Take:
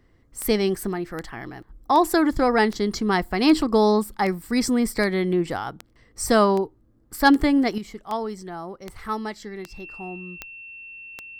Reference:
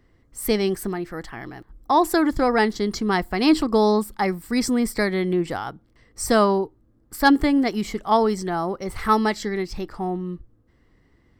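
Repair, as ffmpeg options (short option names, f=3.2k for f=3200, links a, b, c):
-af "adeclick=t=4,bandreject=f=2.7k:w=30,asetnsamples=n=441:p=0,asendcmd='7.78 volume volume 9.5dB',volume=0dB"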